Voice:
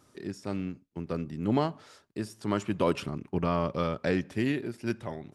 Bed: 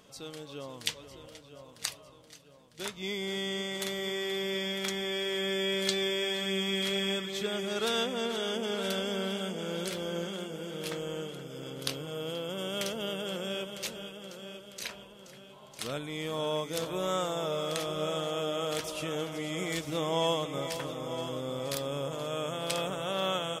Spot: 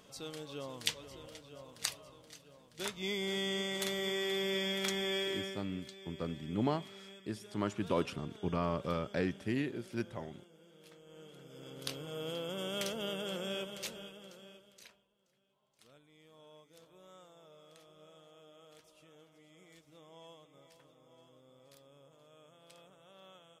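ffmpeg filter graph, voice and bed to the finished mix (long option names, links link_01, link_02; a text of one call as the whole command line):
ffmpeg -i stem1.wav -i stem2.wav -filter_complex "[0:a]adelay=5100,volume=-6dB[link_01];[1:a]volume=17dB,afade=type=out:start_time=5.17:duration=0.45:silence=0.0944061,afade=type=in:start_time=11.05:duration=1.25:silence=0.11885,afade=type=out:start_time=13.63:duration=1.39:silence=0.0707946[link_02];[link_01][link_02]amix=inputs=2:normalize=0" out.wav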